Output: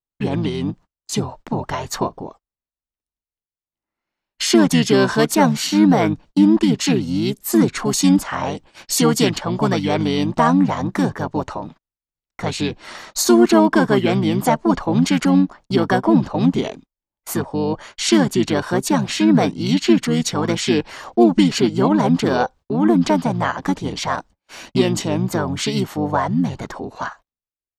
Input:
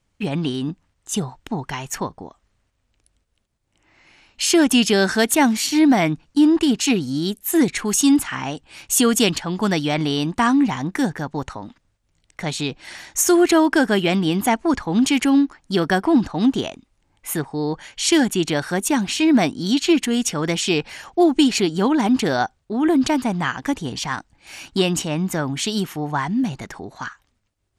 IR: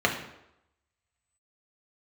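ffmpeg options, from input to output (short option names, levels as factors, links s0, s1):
-filter_complex "[0:a]equalizer=f=100:t=o:w=0.67:g=-4,equalizer=f=400:t=o:w=0.67:g=4,equalizer=f=1000:t=o:w=0.67:g=5,equalizer=f=2500:t=o:w=0.67:g=-5,equalizer=f=10000:t=o:w=0.67:g=-6,asplit=2[s0][s1];[s1]acompressor=threshold=0.0794:ratio=6,volume=0.75[s2];[s0][s2]amix=inputs=2:normalize=0,agate=range=0.0251:threshold=0.0141:ratio=16:detection=peak,asplit=2[s3][s4];[s4]asetrate=29433,aresample=44100,atempo=1.49831,volume=0.708[s5];[s3][s5]amix=inputs=2:normalize=0,volume=0.668"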